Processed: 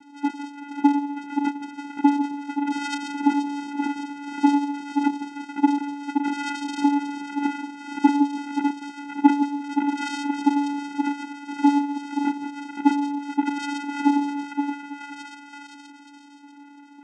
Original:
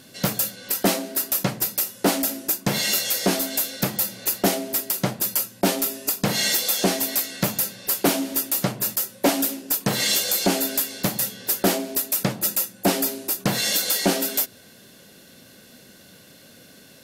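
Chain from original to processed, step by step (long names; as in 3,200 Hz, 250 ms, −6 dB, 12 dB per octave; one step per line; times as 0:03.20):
three sine waves on the formant tracks
echo through a band-pass that steps 522 ms, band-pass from 920 Hz, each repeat 0.7 octaves, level −1.5 dB
channel vocoder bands 4, square 286 Hz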